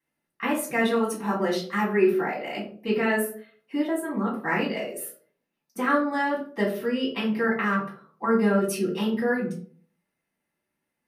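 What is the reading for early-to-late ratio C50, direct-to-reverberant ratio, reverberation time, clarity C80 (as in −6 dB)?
7.0 dB, −5.5 dB, 0.50 s, 12.0 dB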